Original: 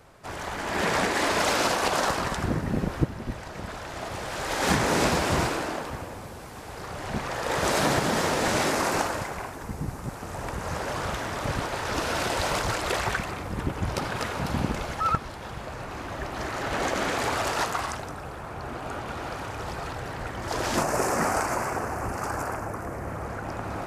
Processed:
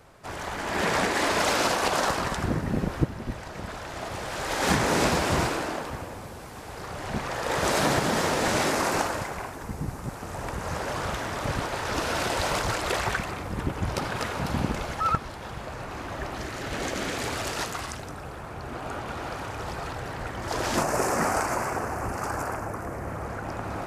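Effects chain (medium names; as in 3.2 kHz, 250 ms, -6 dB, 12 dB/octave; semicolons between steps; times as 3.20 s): 16.34–18.72 s: dynamic bell 940 Hz, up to -7 dB, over -39 dBFS, Q 0.73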